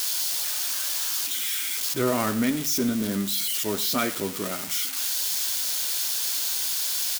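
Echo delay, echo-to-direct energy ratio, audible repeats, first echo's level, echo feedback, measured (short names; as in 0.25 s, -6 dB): 0.1 s, -17.5 dB, 2, -18.0 dB, 32%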